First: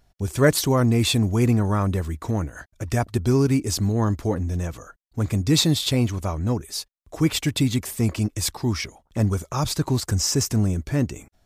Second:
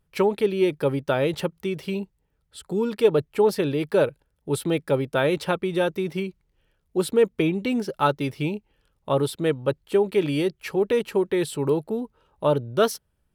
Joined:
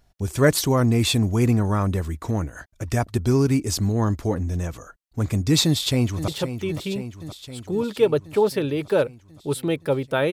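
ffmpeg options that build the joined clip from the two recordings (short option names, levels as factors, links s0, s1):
-filter_complex "[0:a]apad=whole_dur=10.32,atrim=end=10.32,atrim=end=6.282[s0];[1:a]atrim=start=1.298:end=5.34[s1];[s0][s1]acrossfade=d=0.004:c1=hsin:c2=hsin,asplit=2[s2][s3];[s3]afade=t=in:st=5.64:d=0.01,afade=t=out:st=6.28:d=0.01,aecho=0:1:520|1040|1560|2080|2600|3120|3640|4160|4680|5200:0.298538|0.208977|0.146284|0.102399|0.071679|0.0501753|0.0351227|0.0245859|0.0172101|0.0120471[s4];[s2][s4]amix=inputs=2:normalize=0"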